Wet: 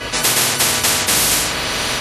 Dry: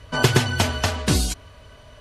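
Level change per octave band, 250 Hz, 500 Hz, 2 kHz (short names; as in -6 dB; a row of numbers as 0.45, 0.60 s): -1.5, +2.0, +7.0 dB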